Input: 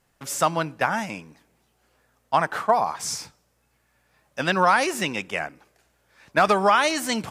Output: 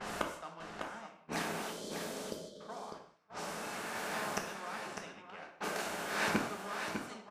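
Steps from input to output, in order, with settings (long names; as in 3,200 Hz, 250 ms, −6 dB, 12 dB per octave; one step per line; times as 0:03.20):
compressor on every frequency bin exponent 0.6
mains-hum notches 60/120/180 Hz
gate with flip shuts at −20 dBFS, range −33 dB
gain on a spectral selection 0:01.71–0:02.61, 660–3,000 Hz −29 dB
single-tap delay 601 ms −7 dB
noise gate −53 dBFS, range −17 dB
convolution reverb, pre-delay 3 ms, DRR 2 dB
low-pass that shuts in the quiet parts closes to 2,200 Hz, open at −39 dBFS
level +2.5 dB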